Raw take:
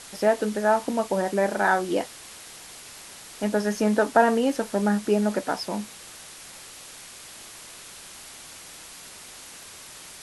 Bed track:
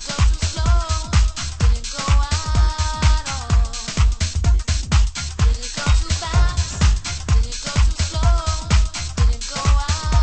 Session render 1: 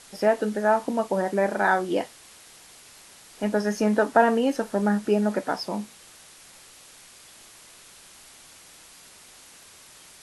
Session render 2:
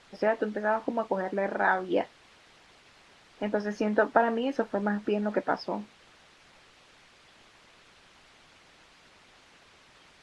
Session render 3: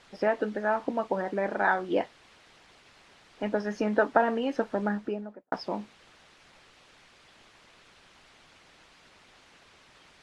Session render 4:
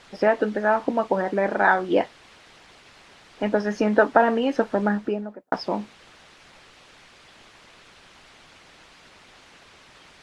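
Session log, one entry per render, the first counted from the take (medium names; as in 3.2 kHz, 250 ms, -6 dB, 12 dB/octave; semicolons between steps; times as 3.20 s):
noise print and reduce 6 dB
low-pass 3.3 kHz 12 dB/octave; harmonic-percussive split harmonic -7 dB
4.81–5.52 s: studio fade out
trim +6.5 dB; peak limiter -3 dBFS, peak gain reduction 1.5 dB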